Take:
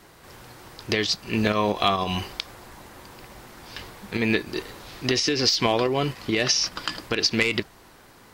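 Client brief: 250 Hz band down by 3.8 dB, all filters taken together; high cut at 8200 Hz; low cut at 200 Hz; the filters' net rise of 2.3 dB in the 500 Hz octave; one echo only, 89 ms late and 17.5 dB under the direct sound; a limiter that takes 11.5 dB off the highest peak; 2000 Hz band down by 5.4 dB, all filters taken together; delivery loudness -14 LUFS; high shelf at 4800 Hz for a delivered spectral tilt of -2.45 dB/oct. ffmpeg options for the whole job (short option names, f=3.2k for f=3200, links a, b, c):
-af "highpass=200,lowpass=8.2k,equalizer=f=250:t=o:g=-5,equalizer=f=500:t=o:g=5,equalizer=f=2k:t=o:g=-8.5,highshelf=f=4.8k:g=7.5,alimiter=limit=-15.5dB:level=0:latency=1,aecho=1:1:89:0.133,volume=13dB"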